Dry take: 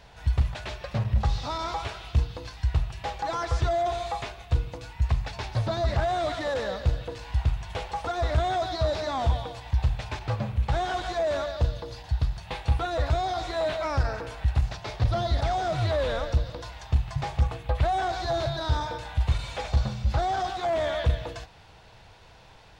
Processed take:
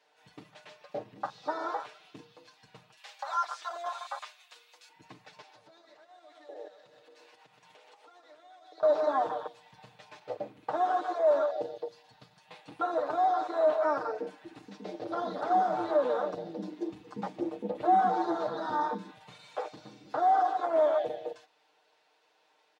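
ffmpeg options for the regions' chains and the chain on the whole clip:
-filter_complex "[0:a]asettb=1/sr,asplit=3[s0][s1][s2];[s0]atrim=end=2.974[s3];[s1]atrim=start=2.97:end=4.89,asetpts=PTS-STARTPTS,afade=t=in:d=0.004:c=qsin,afade=t=out:st=1.916:d=0.004:c=qsin,highpass=1000,highshelf=f=2300:g=9[s4];[s2]atrim=start=4.886[s5];[s3][s4]acrossfade=d=0.004:c1=hsin:c2=qsin[s6];[s6][s5]acrossfade=d=0.004:c1=qsin:c2=hsin,asettb=1/sr,asplit=3[s7][s8][s9];[s7]atrim=end=5.414[s10];[s8]atrim=start=5.41:end=8.83,asetpts=PTS-STARTPTS,afade=t=in:d=0.004:c=qsin,afade=t=out:st=3.416:d=0.004:c=qsin,highpass=160,aecho=1:1:124|248|372|496|620|744:0.398|0.215|0.116|0.0627|0.0339|0.0183,atrim=end_sample=150822,acompressor=threshold=0.0141:ratio=12:attack=3.2:release=140:knee=1:detection=peak[s11];[s9]atrim=start=8.826[s12];[s10][s11]acrossfade=d=0.004:c1=hsin:c2=qsin[s13];[s13][s12]acrossfade=d=0.004:c1=qsin:c2=hsin,asettb=1/sr,asplit=3[s14][s15][s16];[s14]atrim=end=13.974[s17];[s15]atrim=start=13.97:end=19.15,asetpts=PTS-STARTPTS,afade=t=in:d=0.004:c=qsin,afade=t=out:st=5.176:d=0.004:c=qsin,bandreject=f=630:w=21,asubboost=boost=11.5:cutoff=66,asplit=4[s18][s19][s20][s21];[s19]adelay=229,afreqshift=140,volume=0.2[s22];[s20]adelay=458,afreqshift=280,volume=0.07[s23];[s21]adelay=687,afreqshift=420,volume=0.0245[s24];[s18][s22][s23][s24]amix=inputs=4:normalize=0,atrim=end_sample=228438[s25];[s16]atrim=start=19.146[s26];[s17][s25]acrossfade=d=0.004:c1=hsin:c2=qsin[s27];[s27][s26]acrossfade=d=0.004:c1=qsin:c2=hsin,afwtdn=0.0398,highpass=f=310:w=0.5412,highpass=f=310:w=1.3066,aecho=1:1:6.6:0.77"

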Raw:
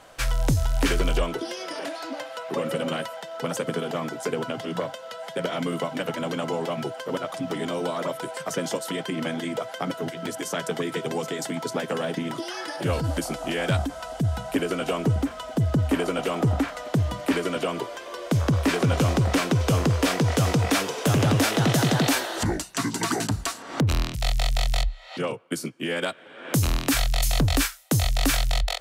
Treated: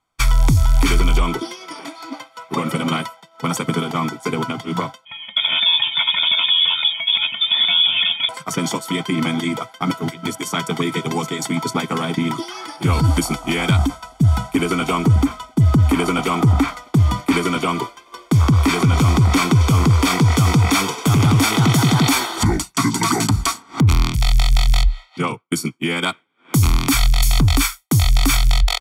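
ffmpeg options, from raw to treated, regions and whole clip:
-filter_complex "[0:a]asettb=1/sr,asplit=3[s0][s1][s2];[s0]atrim=end=5.054[s3];[s1]atrim=start=5.05:end=8.29,asetpts=PTS-STARTPTS,afade=t=in:d=0.004:c=qsin,afade=t=out:st=3.236:d=0.004:c=qsin,aecho=1:1:2.5:0.98,atrim=end_sample=142884,lowpass=f=3200:t=q:w=0.5098,lowpass=f=3200:t=q:w=0.6013,lowpass=f=3200:t=q:w=0.9,lowpass=f=3200:t=q:w=2.563,afreqshift=-3800[s4];[s2]atrim=start=8.286[s5];[s3][s4]acrossfade=d=0.004:c1=hsin:c2=qsin[s6];[s6][s5]acrossfade=d=0.004:c1=qsin:c2=hsin,aecho=1:1:0.9:0.75,agate=range=0.0224:threshold=0.0501:ratio=3:detection=peak,alimiter=level_in=4.73:limit=0.891:release=50:level=0:latency=1,volume=0.501"

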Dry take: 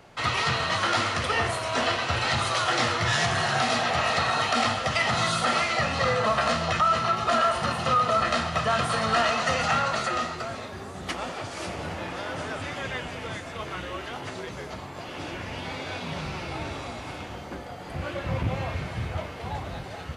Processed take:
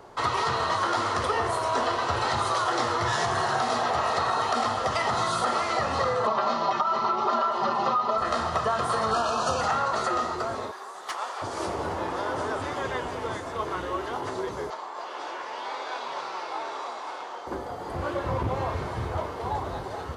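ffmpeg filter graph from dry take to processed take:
-filter_complex "[0:a]asettb=1/sr,asplit=3[s0][s1][s2];[s0]atrim=end=6.274[s3];[s1]atrim=start=6.27:end=8.18,asetpts=PTS-STARTPTS,afade=t=in:d=0.004:c=qsin,afade=t=out:st=1.906:d=0.004:c=qsin,highpass=f=110:w=0.5412,highpass=f=110:w=1.3066,equalizer=f=170:t=q:w=4:g=-8,equalizer=f=280:t=q:w=4:g=5,equalizer=f=890:t=q:w=4:g=7,equalizer=f=1600:t=q:w=4:g=-5,lowpass=f=5600:w=0.5412,lowpass=f=5600:w=1.3066,aecho=1:1:5.1:0.93,atrim=end_sample=84231[s4];[s2]atrim=start=8.176[s5];[s3][s4]acrossfade=d=0.004:c1=hsin:c2=qsin[s6];[s6][s5]acrossfade=d=0.004:c1=qsin:c2=hsin,asettb=1/sr,asplit=3[s7][s8][s9];[s7]atrim=end=9.114[s10];[s8]atrim=start=9.11:end=9.61,asetpts=PTS-STARTPTS,afade=t=in:d=0.004:c=qsin,afade=t=out:st=0.496:d=0.004:c=qsin,asuperstop=centerf=2000:order=12:qfactor=3.8,bass=f=250:g=4,treble=f=4000:g=5[s11];[s9]atrim=start=9.606[s12];[s10][s11]acrossfade=d=0.004:c1=hsin:c2=qsin[s13];[s13][s12]acrossfade=d=0.004:c1=qsin:c2=hsin,asettb=1/sr,asplit=3[s14][s15][s16];[s14]atrim=end=10.714[s17];[s15]atrim=start=10.71:end=11.42,asetpts=PTS-STARTPTS,afade=t=in:d=0.004:c=qsin,afade=t=out:st=0.706:d=0.004:c=qsin,highpass=900,asoftclip=type=hard:threshold=0.0562[s18];[s16]atrim=start=11.416[s19];[s17][s18]acrossfade=d=0.004:c1=hsin:c2=qsin[s20];[s20][s19]acrossfade=d=0.004:c1=qsin:c2=hsin,asettb=1/sr,asplit=3[s21][s22][s23];[s21]atrim=end=14.704[s24];[s22]atrim=start=14.7:end=17.47,asetpts=PTS-STARTPTS,afade=t=in:d=0.004:c=qsin,afade=t=out:st=2.766:d=0.004:c=qsin,highpass=660,lowpass=7000,asplit=2[s25][s26];[s26]adelay=25,volume=0.251[s27];[s25][s27]amix=inputs=2:normalize=0,atrim=end_sample=122157[s28];[s23]atrim=start=17.466[s29];[s24][s28]acrossfade=d=0.004:c1=hsin:c2=qsin[s30];[s30][s29]acrossfade=d=0.004:c1=qsin:c2=hsin,equalizer=f=160:t=o:w=0.67:g=-5,equalizer=f=400:t=o:w=0.67:g=8,equalizer=f=1000:t=o:w=0.67:g=9,equalizer=f=2500:t=o:w=0.67:g=-8,acompressor=threshold=0.0794:ratio=6"

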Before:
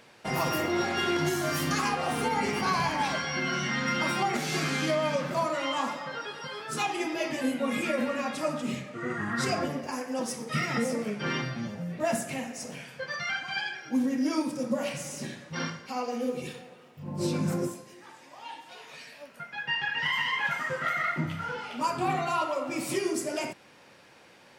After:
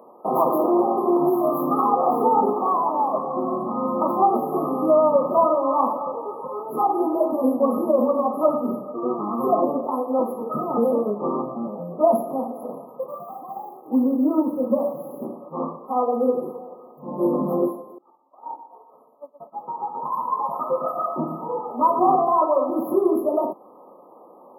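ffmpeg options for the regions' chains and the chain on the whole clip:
-filter_complex "[0:a]asettb=1/sr,asplit=3[s0][s1][s2];[s0]atrim=end=2.534[s3];[s1]atrim=start=2.53:end=3.14,asetpts=PTS-STARTPTS,afade=t=in:d=0.004:c=qsin,afade=t=out:st=0.606:d=0.004:c=qsin,highpass=240,lowpass=4500,aeval=exprs='clip(val(0),-1,0.02)':c=same[s4];[s2]atrim=start=3.136[s5];[s3][s4]acrossfade=d=0.004:c1=hsin:c2=qsin[s6];[s6][s5]acrossfade=d=0.004:c1=qsin:c2=hsin,asettb=1/sr,asplit=3[s7][s8][s9];[s7]atrim=end=5.714[s10];[s8]atrim=start=5.71:end=9.54,asetpts=PTS-STARTPTS,afade=t=in:d=0.004:c=qsin,afade=t=out:st=3.826:d=0.004:c=qsin,equalizer=f=15000:t=o:w=0.62:g=6.5,aeval=exprs='val(0)+0.00316*(sin(2*PI*50*n/s)+sin(2*PI*2*50*n/s)/2+sin(2*PI*3*50*n/s)/3+sin(2*PI*4*50*n/s)/4+sin(2*PI*5*50*n/s)/5)':c=same[s11];[s9]atrim=start=9.536[s12];[s10][s11]acrossfade=d=0.004:c1=hsin:c2=qsin[s13];[s13][s12]acrossfade=d=0.004:c1=qsin:c2=hsin,asettb=1/sr,asplit=3[s14][s15][s16];[s14]atrim=end=12.994[s17];[s15]atrim=start=12.99:end=15.25,asetpts=PTS-STARTPTS,afade=t=in:d=0.004:c=qsin,afade=t=out:st=2.256:d=0.004:c=qsin,equalizer=f=2500:t=o:w=2.6:g=-10.5,acrusher=bits=7:mix=0:aa=0.5[s18];[s16]atrim=start=15.246[s19];[s17][s18]acrossfade=d=0.004:c1=hsin:c2=qsin[s20];[s20][s19]acrossfade=d=0.004:c1=qsin:c2=hsin,asettb=1/sr,asplit=3[s21][s22][s23];[s21]atrim=end=17.984[s24];[s22]atrim=start=17.98:end=22.16,asetpts=PTS-STARTPTS,afade=t=in:d=0.004:c=qsin,afade=t=out:st=4.176:d=0.004:c=qsin,agate=range=0.0224:threshold=0.0112:ratio=3:release=100:detection=peak,aecho=1:1:120|240|360|480|600|720:0.282|0.149|0.0792|0.042|0.0222|0.0118,atrim=end_sample=184338[s25];[s23]atrim=start=22.156[s26];[s24][s25]acrossfade=d=0.004:c1=hsin:c2=qsin[s27];[s27][s26]acrossfade=d=0.004:c1=qsin:c2=hsin,equalizer=f=620:w=0.36:g=10,afftfilt=real='re*(1-between(b*sr/4096,1300,11000))':imag='im*(1-between(b*sr/4096,1300,11000))':win_size=4096:overlap=0.75,highpass=f=210:w=0.5412,highpass=f=210:w=1.3066,volume=1.26"

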